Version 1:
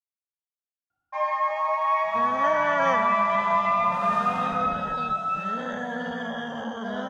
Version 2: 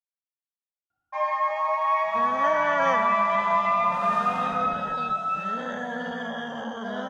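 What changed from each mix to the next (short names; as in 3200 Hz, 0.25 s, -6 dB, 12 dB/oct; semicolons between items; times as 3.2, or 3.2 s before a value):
second sound: add low shelf 110 Hz -8 dB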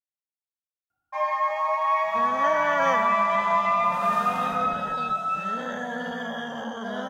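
master: remove air absorption 53 m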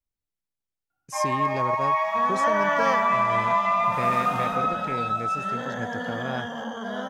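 speech: unmuted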